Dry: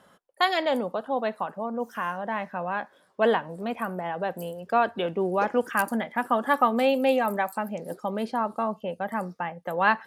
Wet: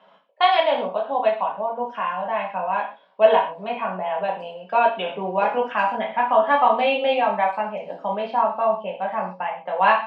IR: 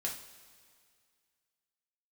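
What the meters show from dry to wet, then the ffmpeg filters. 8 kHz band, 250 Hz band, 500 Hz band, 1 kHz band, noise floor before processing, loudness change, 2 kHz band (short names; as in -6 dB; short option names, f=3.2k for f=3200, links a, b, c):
under -20 dB, -4.5 dB, +5.5 dB, +7.0 dB, -61 dBFS, +5.0 dB, +2.5 dB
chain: -filter_complex "[0:a]highpass=f=200:w=0.5412,highpass=f=200:w=1.3066,equalizer=f=240:t=q:w=4:g=-6,equalizer=f=350:t=q:w=4:g=-6,equalizer=f=650:t=q:w=4:g=6,equalizer=f=960:t=q:w=4:g=10,equalizer=f=1.9k:t=q:w=4:g=-8,lowpass=f=2.7k:w=0.5412,lowpass=f=2.7k:w=1.3066[a];[1:a]atrim=start_sample=2205,afade=t=out:st=0.19:d=0.01,atrim=end_sample=8820[b];[a][b]afir=irnorm=-1:irlink=0,aexciter=amount=4.8:drive=2.4:freq=2k"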